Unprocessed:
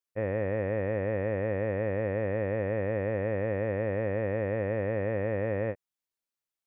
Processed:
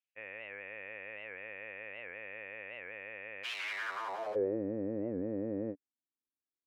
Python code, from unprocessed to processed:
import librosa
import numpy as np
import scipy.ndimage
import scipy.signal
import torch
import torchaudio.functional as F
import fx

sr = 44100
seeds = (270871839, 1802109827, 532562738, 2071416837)

y = fx.overflow_wrap(x, sr, gain_db=30.5, at=(3.43, 4.35), fade=0.02)
y = fx.filter_sweep_bandpass(y, sr, from_hz=2600.0, to_hz=280.0, start_s=3.63, end_s=4.62, q=4.3)
y = fx.record_warp(y, sr, rpm=78.0, depth_cents=160.0)
y = F.gain(torch.from_numpy(y), 5.5).numpy()